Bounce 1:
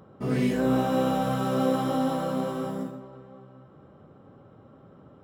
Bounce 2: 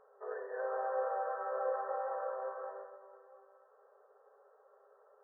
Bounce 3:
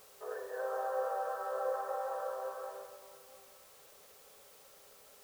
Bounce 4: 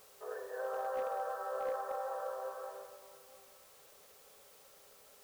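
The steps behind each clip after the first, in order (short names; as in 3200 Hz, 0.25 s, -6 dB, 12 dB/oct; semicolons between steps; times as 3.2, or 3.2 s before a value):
FFT band-pass 390–1900 Hz; gain -7.5 dB
requantised 10-bit, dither triangular
overloaded stage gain 29 dB; gain -1.5 dB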